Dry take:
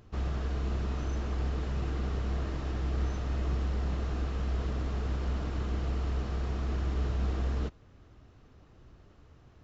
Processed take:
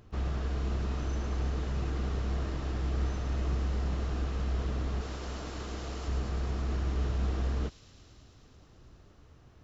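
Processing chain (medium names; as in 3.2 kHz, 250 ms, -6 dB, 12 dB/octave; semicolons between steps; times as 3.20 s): 5.01–6.08 s: tone controls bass -8 dB, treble +7 dB; feedback echo behind a high-pass 109 ms, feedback 85%, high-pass 4.7 kHz, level -5.5 dB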